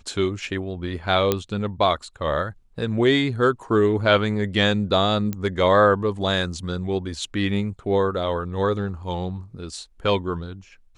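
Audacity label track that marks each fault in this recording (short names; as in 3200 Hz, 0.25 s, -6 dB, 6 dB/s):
1.320000	1.320000	pop -6 dBFS
5.330000	5.330000	pop -14 dBFS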